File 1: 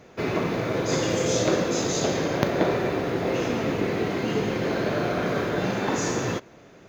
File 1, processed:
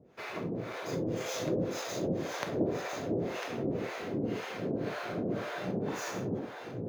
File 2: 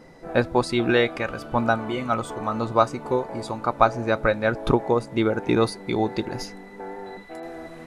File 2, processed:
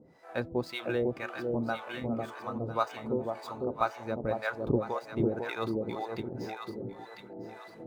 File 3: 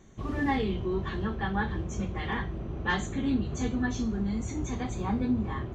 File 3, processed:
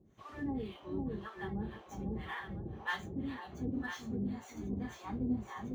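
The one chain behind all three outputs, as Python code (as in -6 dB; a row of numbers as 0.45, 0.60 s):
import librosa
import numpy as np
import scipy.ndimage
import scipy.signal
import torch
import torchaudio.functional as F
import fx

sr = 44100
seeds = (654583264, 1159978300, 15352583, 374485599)

p1 = scipy.signal.medfilt(x, 5)
p2 = p1 + fx.echo_alternate(p1, sr, ms=500, hz=810.0, feedback_pct=55, wet_db=-2.0, dry=0)
p3 = fx.harmonic_tremolo(p2, sr, hz=1.9, depth_pct=100, crossover_hz=610.0)
p4 = scipy.signal.sosfilt(scipy.signal.butter(2, 67.0, 'highpass', fs=sr, output='sos'), p3)
y = F.gain(torch.from_numpy(p4), -6.5).numpy()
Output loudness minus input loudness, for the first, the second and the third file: -9.5, -10.0, -9.0 LU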